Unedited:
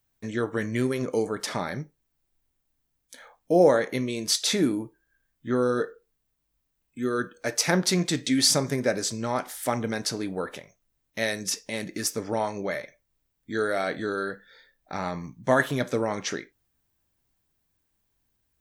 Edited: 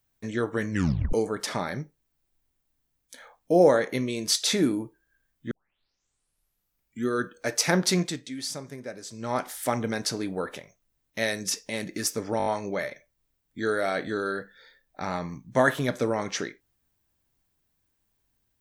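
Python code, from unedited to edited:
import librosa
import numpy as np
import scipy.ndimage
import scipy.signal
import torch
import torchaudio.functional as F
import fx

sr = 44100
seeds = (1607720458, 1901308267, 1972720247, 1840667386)

y = fx.edit(x, sr, fx.tape_stop(start_s=0.71, length_s=0.42),
    fx.tape_start(start_s=5.51, length_s=1.57),
    fx.fade_down_up(start_s=7.99, length_s=1.35, db=-13.0, fade_s=0.33, curve='qua'),
    fx.stutter(start_s=12.38, slice_s=0.02, count=5), tone=tone)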